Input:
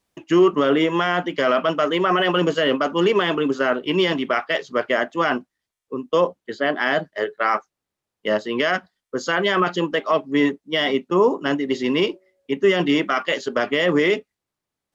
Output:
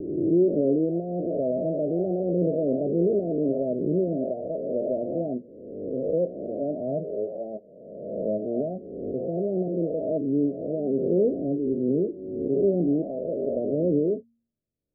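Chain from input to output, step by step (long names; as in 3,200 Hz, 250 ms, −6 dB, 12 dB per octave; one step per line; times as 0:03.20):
peak hold with a rise ahead of every peak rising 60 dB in 1.38 s
Butterworth low-pass 670 Hz 96 dB per octave
low-shelf EQ 220 Hz +10 dB
hum removal 116 Hz, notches 2
level −9 dB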